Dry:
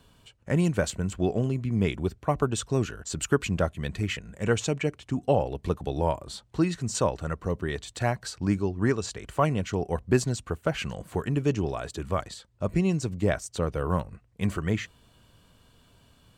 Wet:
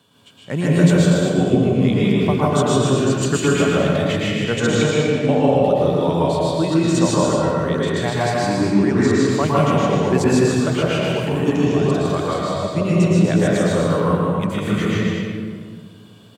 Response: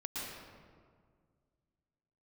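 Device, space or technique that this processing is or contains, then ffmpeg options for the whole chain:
stadium PA: -filter_complex "[0:a]highpass=frequency=120:width=0.5412,highpass=frequency=120:width=1.3066,equalizer=frequency=3400:width_type=o:width=0.26:gain=6,aecho=1:1:154.5|242:0.708|0.501[link_01];[1:a]atrim=start_sample=2205[link_02];[link_01][link_02]afir=irnorm=-1:irlink=0,volume=6dB"

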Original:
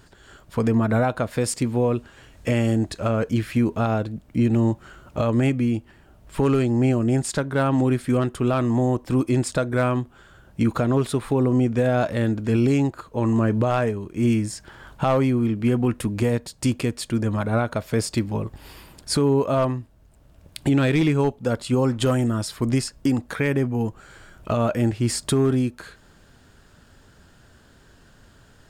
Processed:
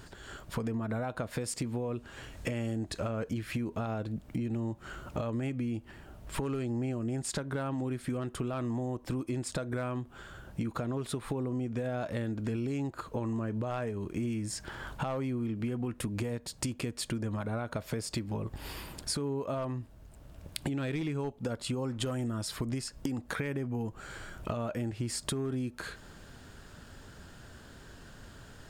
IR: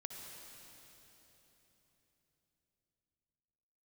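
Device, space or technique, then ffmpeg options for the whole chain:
serial compression, peaks first: -af "acompressor=threshold=-28dB:ratio=6,acompressor=threshold=-37dB:ratio=2,volume=2dB"

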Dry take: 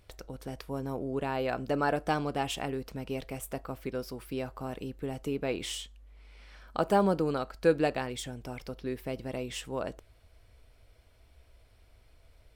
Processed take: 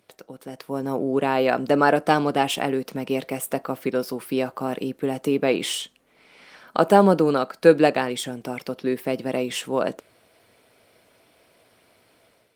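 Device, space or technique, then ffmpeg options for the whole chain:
video call: -af "highpass=frequency=160:width=0.5412,highpass=frequency=160:width=1.3066,dynaudnorm=framelen=490:gausssize=3:maxgain=9dB,volume=2.5dB" -ar 48000 -c:a libopus -b:a 32k

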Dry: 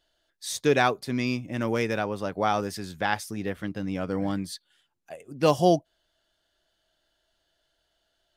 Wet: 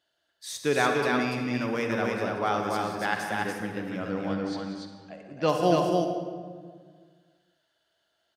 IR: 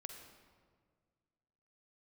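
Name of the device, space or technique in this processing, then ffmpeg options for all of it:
stadium PA: -filter_complex "[0:a]asettb=1/sr,asplit=3[link_01][link_02][link_03];[link_01]atrim=end=4.094[link_04];[link_02]atrim=start=4.09:end=5.49,asetpts=PTS-STARTPTS,afade=type=in:duration=0.004:curve=qsin,afade=type=out:start_time=1.396:duration=0.004:curve=qsin,lowpass=frequency=6200:width=0.5412,lowpass=frequency=6200:width=1.3066[link_05];[link_03]atrim=start=5.486[link_06];[link_04][link_05]acrossfade=duration=0.004:curve1=hsin:curve2=qsin[link_07];[link_07][link_06]acrossfade=duration=0.004:curve1=qsin:curve2=hsin,highpass=140,lowshelf=frequency=150:gain=5,equalizer=frequency=1500:width_type=o:width=1.8:gain=4,aecho=1:1:183.7|288.6:0.282|0.708[link_08];[1:a]atrim=start_sample=2205[link_09];[link_08][link_09]afir=irnorm=-1:irlink=0"

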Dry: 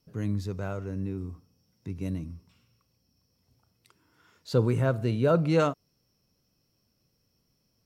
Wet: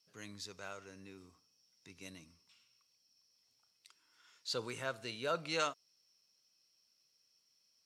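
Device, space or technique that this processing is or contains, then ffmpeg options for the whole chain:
piezo pickup straight into a mixer: -af "lowpass=5600,aderivative,volume=8.5dB"

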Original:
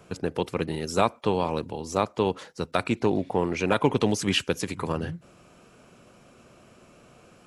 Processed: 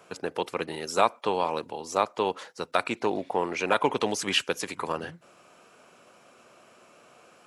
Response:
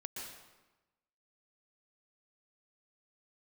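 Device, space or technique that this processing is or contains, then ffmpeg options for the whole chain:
filter by subtraction: -filter_complex "[0:a]asplit=2[link_01][link_02];[link_02]lowpass=860,volume=-1[link_03];[link_01][link_03]amix=inputs=2:normalize=0"

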